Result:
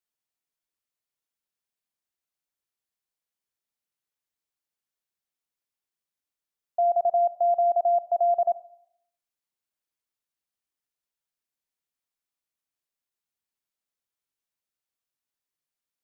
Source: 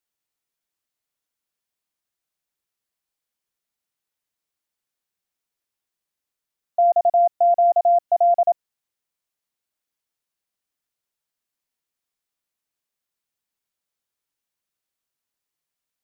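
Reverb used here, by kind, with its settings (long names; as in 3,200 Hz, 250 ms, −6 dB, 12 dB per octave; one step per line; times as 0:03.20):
four-comb reverb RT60 0.68 s, combs from 28 ms, DRR 15.5 dB
level −6 dB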